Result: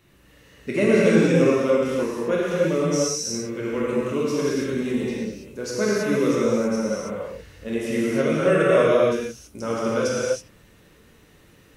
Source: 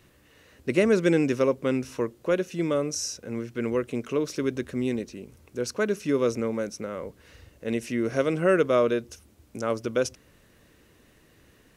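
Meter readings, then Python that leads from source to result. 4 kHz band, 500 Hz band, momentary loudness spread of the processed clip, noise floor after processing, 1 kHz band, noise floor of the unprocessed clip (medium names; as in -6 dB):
+5.0 dB, +5.0 dB, 14 LU, -54 dBFS, +5.0 dB, -59 dBFS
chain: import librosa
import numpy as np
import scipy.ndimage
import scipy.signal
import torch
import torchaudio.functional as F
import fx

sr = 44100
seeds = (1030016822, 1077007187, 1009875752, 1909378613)

y = fx.spec_quant(x, sr, step_db=15)
y = fx.rev_gated(y, sr, seeds[0], gate_ms=350, shape='flat', drr_db=-7.0)
y = y * librosa.db_to_amplitude(-2.0)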